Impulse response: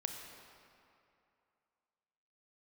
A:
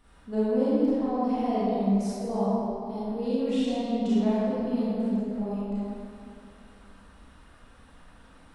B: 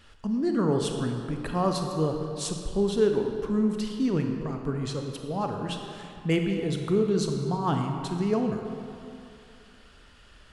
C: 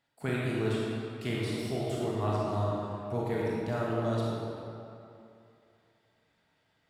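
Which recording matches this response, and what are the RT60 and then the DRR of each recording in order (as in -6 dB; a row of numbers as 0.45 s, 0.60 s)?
B; 2.6 s, 2.6 s, 2.6 s; -11.0 dB, 3.5 dB, -6.0 dB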